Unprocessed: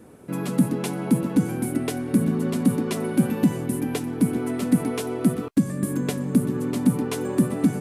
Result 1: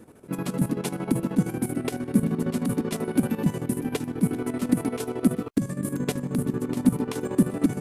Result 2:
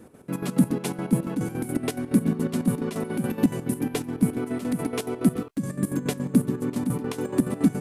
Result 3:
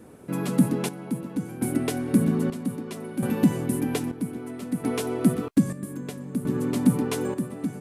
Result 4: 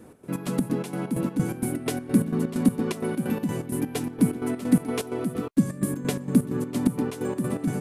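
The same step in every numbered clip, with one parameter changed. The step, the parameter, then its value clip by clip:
chopper, rate: 13, 7.1, 0.62, 4.3 Hz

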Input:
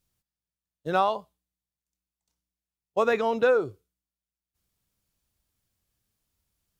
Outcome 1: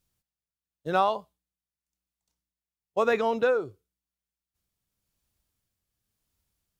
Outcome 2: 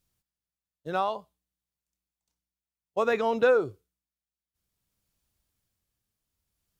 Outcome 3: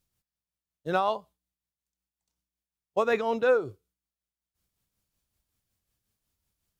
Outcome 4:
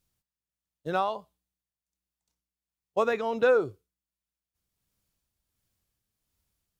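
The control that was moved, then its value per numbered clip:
tremolo, rate: 0.94, 0.57, 5.4, 1.4 Hz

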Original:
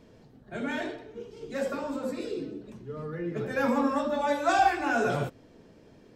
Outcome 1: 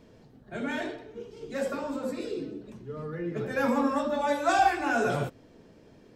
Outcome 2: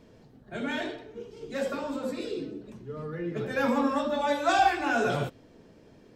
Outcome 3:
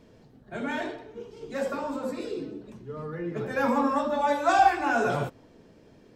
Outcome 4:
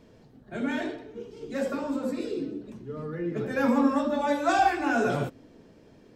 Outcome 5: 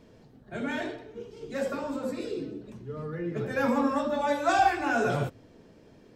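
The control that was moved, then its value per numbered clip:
dynamic EQ, frequency: 9800, 3400, 950, 270, 100 Hz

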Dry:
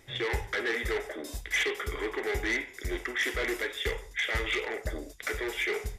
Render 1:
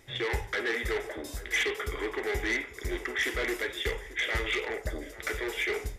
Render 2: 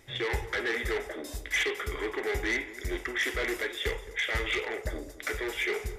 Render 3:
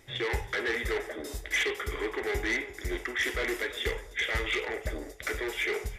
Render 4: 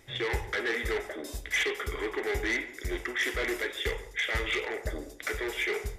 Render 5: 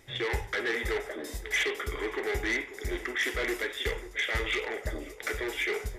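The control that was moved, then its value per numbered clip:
tape echo, time: 0.837, 0.217, 0.346, 0.139, 0.538 s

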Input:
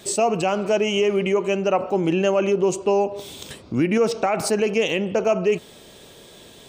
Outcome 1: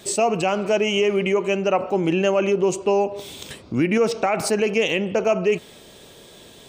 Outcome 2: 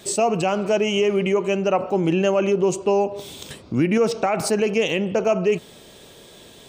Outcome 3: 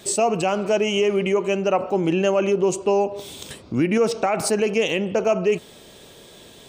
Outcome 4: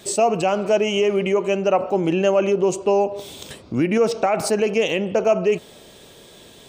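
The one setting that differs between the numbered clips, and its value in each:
dynamic EQ, frequency: 2200, 150, 9400, 620 Hz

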